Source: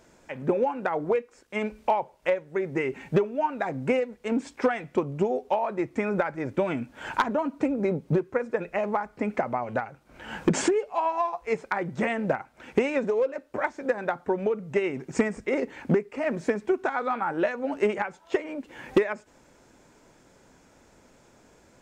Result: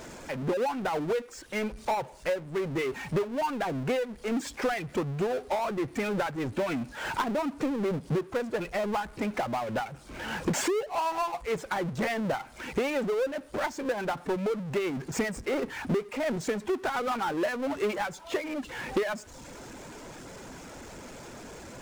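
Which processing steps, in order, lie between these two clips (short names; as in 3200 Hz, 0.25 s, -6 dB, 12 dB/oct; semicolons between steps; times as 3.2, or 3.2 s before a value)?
reverb removal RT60 0.58 s; downsampling 22050 Hz; power-law curve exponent 0.5; gain -8 dB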